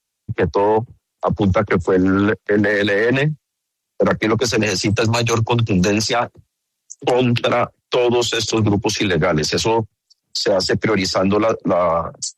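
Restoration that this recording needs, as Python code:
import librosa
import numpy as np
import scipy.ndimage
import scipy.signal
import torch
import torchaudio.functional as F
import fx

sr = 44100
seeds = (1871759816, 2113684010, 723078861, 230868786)

y = fx.fix_declip(x, sr, threshold_db=-6.5)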